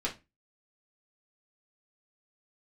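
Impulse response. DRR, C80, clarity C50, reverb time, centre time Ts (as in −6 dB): −4.0 dB, 22.0 dB, 13.0 dB, 0.25 s, 14 ms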